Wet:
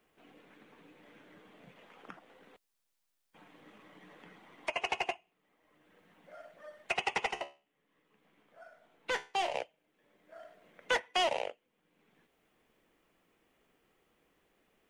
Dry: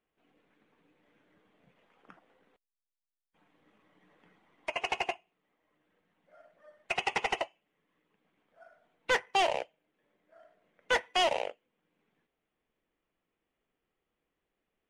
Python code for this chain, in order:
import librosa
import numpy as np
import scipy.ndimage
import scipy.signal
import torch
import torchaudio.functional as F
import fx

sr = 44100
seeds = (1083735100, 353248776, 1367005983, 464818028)

y = fx.comb_fb(x, sr, f0_hz=71.0, decay_s=0.29, harmonics='all', damping=0.0, mix_pct=70, at=(7.31, 9.55))
y = fx.band_squash(y, sr, depth_pct=40)